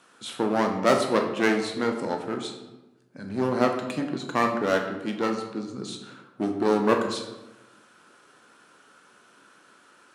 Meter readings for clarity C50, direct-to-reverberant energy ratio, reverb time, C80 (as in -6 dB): 6.5 dB, 3.0 dB, 1.1 s, 8.5 dB